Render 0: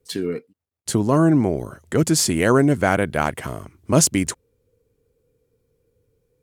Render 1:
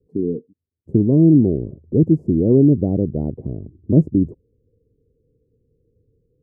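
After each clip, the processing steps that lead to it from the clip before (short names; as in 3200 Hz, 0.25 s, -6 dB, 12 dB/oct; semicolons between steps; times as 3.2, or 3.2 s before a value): inverse Chebyshev low-pass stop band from 1400 Hz, stop band 60 dB; gain +5 dB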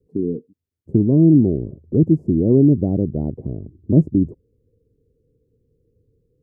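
dynamic EQ 480 Hz, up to -3 dB, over -31 dBFS, Q 3.4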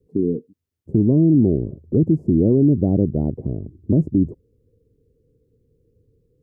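limiter -9.5 dBFS, peak gain reduction 8 dB; gain +2 dB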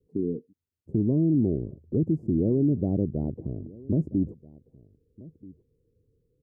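outdoor echo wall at 220 m, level -21 dB; gain -8 dB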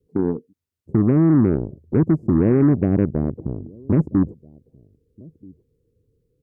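added harmonics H 7 -25 dB, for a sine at -14.5 dBFS; gain +7.5 dB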